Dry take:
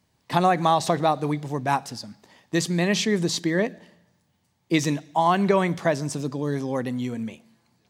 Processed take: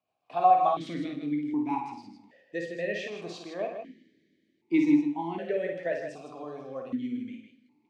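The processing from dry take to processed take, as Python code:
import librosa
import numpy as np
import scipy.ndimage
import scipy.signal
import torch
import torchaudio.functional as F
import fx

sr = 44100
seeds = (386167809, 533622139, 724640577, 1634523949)

p1 = fx.rotary_switch(x, sr, hz=6.7, then_hz=0.7, switch_at_s=0.23)
p2 = p1 + fx.echo_multitap(p1, sr, ms=(54, 127, 158), db=(-5.5, -16.5, -7.5), dry=0)
p3 = fx.rev_double_slope(p2, sr, seeds[0], early_s=0.5, late_s=3.6, knee_db=-28, drr_db=7.5)
p4 = fx.vowel_held(p3, sr, hz=1.3)
y = p4 * librosa.db_to_amplitude(3.5)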